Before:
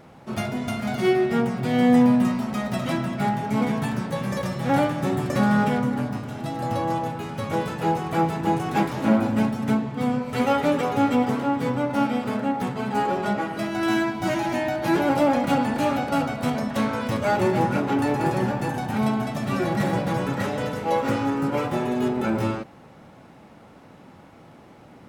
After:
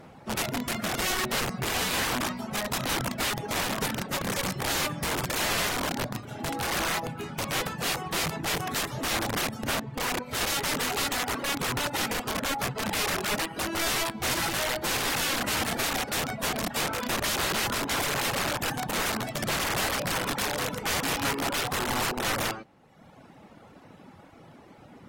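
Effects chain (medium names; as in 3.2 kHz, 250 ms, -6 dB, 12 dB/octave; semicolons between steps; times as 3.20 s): reverb removal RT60 1.1 s; integer overflow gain 24 dB; AAC 48 kbps 44.1 kHz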